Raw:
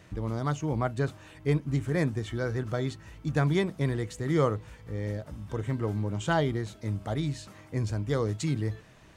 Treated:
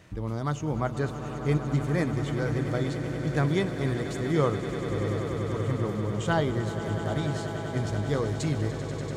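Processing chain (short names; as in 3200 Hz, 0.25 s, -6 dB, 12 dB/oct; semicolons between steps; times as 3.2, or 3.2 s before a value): swelling echo 97 ms, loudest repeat 8, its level -13.5 dB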